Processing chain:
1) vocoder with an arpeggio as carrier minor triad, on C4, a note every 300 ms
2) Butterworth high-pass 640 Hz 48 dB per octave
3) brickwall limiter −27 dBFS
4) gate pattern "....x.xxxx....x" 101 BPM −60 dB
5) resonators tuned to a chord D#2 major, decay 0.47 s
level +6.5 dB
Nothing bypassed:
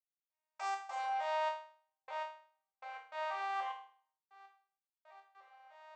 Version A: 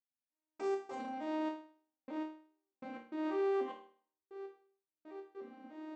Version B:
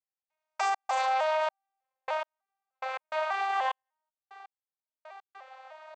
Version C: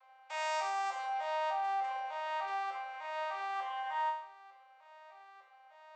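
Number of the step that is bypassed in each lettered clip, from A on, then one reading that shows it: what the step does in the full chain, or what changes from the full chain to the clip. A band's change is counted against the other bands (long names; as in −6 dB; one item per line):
2, 500 Hz band +14.0 dB
5, change in crest factor −2.5 dB
4, 500 Hz band −2.5 dB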